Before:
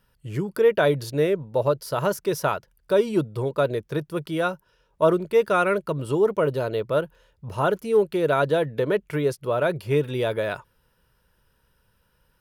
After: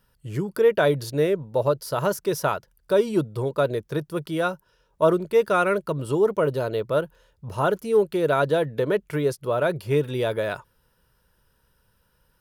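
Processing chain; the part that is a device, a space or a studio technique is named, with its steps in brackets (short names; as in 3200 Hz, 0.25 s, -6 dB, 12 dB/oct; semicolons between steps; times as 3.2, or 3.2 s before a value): exciter from parts (in parallel at -10 dB: HPF 2200 Hz 24 dB/oct + soft clip -35 dBFS, distortion -10 dB)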